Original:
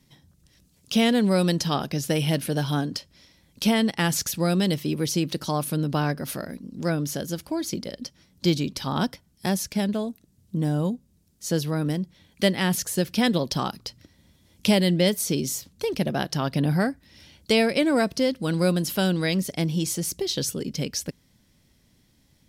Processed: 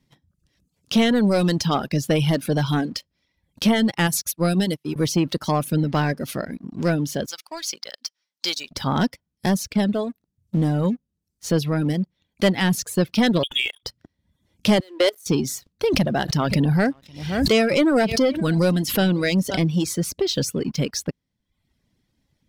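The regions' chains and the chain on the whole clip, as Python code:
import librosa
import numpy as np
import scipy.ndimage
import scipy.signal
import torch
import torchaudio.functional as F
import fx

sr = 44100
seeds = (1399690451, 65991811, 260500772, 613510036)

y = fx.chain(x, sr, fx.peak_eq(hz=11000.0, db=10.5, octaves=0.71),
    fx.upward_expand(threshold_db=-34.0, expansion=2.5), at=(4.07, 4.96))
y = fx.chain(y, sr, fx.highpass(hz=990.0, slope=12),
    fx.peak_eq(hz=5400.0, db=6.0, octaves=1.1), at=(7.26, 8.71))
y = fx.chain(y, sr, fx.air_absorb(metres=120.0),
    fx.freq_invert(carrier_hz=3500), at=(13.43, 13.83))
y = fx.chain(y, sr, fx.steep_highpass(hz=320.0, slope=48),
    fx.leveller(passes=1),
    fx.level_steps(step_db=20), at=(14.8, 15.26))
y = fx.chain(y, sr, fx.echo_single(ms=527, db=-21.5),
    fx.pre_swell(db_per_s=64.0), at=(15.9, 19.65))
y = fx.high_shelf(y, sr, hz=5400.0, db=-9.5)
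y = fx.leveller(y, sr, passes=2)
y = fx.dereverb_blind(y, sr, rt60_s=0.71)
y = y * librosa.db_to_amplitude(-1.0)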